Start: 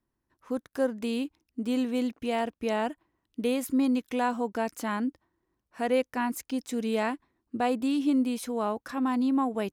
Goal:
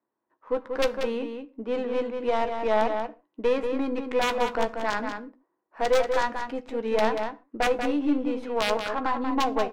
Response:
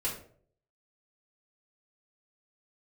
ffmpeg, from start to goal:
-filter_complex "[0:a]highpass=540,aeval=exprs='(tanh(12.6*val(0)+0.7)-tanh(0.7))/12.6':c=same,asplit=2[a][b];[b]alimiter=level_in=5.5dB:limit=-24dB:level=0:latency=1:release=176,volume=-5.5dB,volume=0.5dB[c];[a][c]amix=inputs=2:normalize=0,asettb=1/sr,asplit=3[d][e][f];[d]atrim=end=0.824[g];[e]atrim=start=0.82:end=1.75,asetpts=PTS-STARTPTS,afade=t=in:d=0.004:c=qsin,afade=t=out:st=0.926:d=0.004:c=qsin,lowpass=4.6k[h];[f]atrim=start=1.746[i];[g][h]acrossfade=d=0.004:c1=hsin:c2=qsin[j];[j][i]acrossfade=d=0.004:c1=qsin:c2=hsin,aeval=exprs='(mod(9.44*val(0)+1,2)-1)/9.44':c=same,adynamicsmooth=sensitivity=2:basefreq=1.1k,asplit=2[k][l];[l]adelay=14,volume=-11dB[m];[k][m]amix=inputs=2:normalize=0,asplit=2[n][o];[o]adelay=186.6,volume=-6dB,highshelf=f=4k:g=-4.2[p];[n][p]amix=inputs=2:normalize=0,asplit=2[q][r];[1:a]atrim=start_sample=2205,atrim=end_sample=6615[s];[r][s]afir=irnorm=-1:irlink=0,volume=-15.5dB[t];[q][t]amix=inputs=2:normalize=0,volume=6.5dB"

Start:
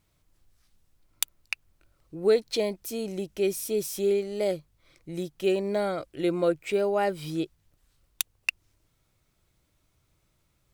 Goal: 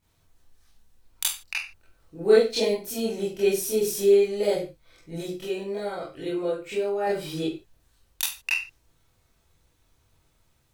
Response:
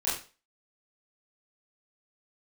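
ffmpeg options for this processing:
-filter_complex "[0:a]asettb=1/sr,asplit=3[a][b][c];[a]atrim=end=5.304[d];[b]atrim=start=5.3:end=7.07,asetpts=PTS-STARTPTS,afade=t=in:d=0.004:c=qsin,afade=t=out:st=1.766:d=0.004:c=qsin,acompressor=threshold=-37dB:ratio=2[e];[c]atrim=start=7.066[f];[d][e]acrossfade=d=0.004:c1=hsin:c2=qsin[g];[g][f]acrossfade=d=0.004:c1=qsin:c2=hsin[h];[1:a]atrim=start_sample=2205,afade=t=out:st=0.25:d=0.01,atrim=end_sample=11466[i];[h][i]afir=irnorm=-1:irlink=0,volume=-3.5dB"

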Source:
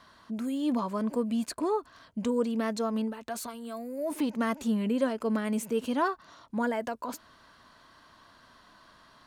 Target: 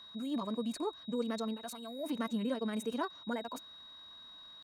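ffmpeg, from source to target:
-af "atempo=2,aeval=exprs='val(0)+0.00631*sin(2*PI*3800*n/s)':c=same,volume=-6.5dB"

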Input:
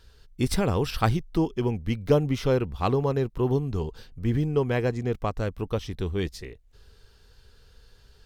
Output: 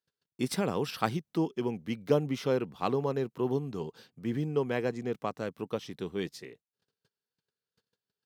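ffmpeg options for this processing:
-af "agate=range=-29dB:threshold=-47dB:ratio=16:detection=peak,highpass=f=150:w=0.5412,highpass=f=150:w=1.3066,volume=-4.5dB"

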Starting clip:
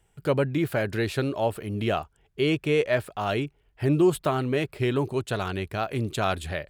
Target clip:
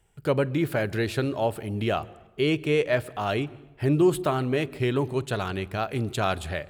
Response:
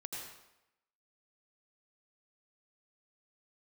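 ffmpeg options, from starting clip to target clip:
-filter_complex "[0:a]asplit=2[a][b];[1:a]atrim=start_sample=2205,lowshelf=f=440:g=8,adelay=47[c];[b][c]afir=irnorm=-1:irlink=0,volume=-20.5dB[d];[a][d]amix=inputs=2:normalize=0"

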